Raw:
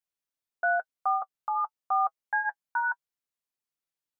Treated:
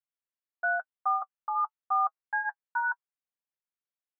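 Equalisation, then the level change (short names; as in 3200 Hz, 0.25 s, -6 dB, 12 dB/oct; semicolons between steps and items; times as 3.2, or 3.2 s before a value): low shelf 470 Hz -11.5 dB; dynamic EQ 1200 Hz, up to +7 dB, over -41 dBFS, Q 1.3; air absorption 410 m; -2.0 dB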